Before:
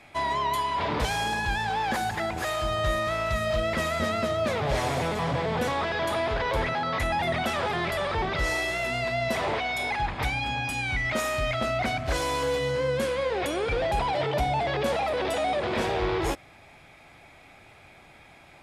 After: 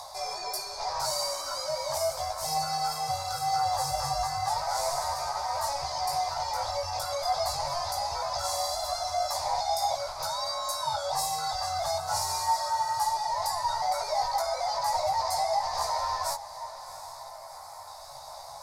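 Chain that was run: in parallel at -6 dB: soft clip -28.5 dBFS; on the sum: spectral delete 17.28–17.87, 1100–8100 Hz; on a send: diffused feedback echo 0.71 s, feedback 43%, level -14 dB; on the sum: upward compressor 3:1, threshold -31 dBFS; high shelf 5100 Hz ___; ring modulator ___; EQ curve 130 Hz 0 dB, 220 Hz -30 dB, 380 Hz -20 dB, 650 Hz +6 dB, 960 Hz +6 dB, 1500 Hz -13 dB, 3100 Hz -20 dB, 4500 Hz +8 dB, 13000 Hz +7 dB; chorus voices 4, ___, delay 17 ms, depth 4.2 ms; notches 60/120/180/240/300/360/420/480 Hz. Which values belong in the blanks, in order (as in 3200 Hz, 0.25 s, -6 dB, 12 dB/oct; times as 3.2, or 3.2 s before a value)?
+3.5 dB, 1400 Hz, 0.34 Hz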